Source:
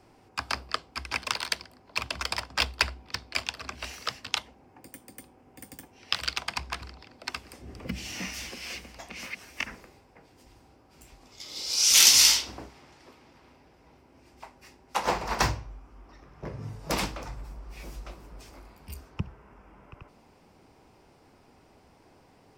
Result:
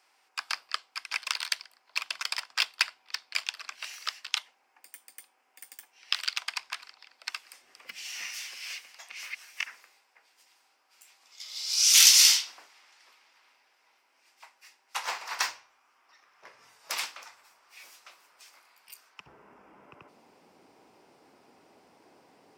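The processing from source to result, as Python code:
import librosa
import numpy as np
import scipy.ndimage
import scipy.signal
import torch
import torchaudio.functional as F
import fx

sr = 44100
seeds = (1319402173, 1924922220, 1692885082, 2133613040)

y = fx.highpass(x, sr, hz=fx.steps((0.0, 1400.0), (19.26, 240.0)), slope=12)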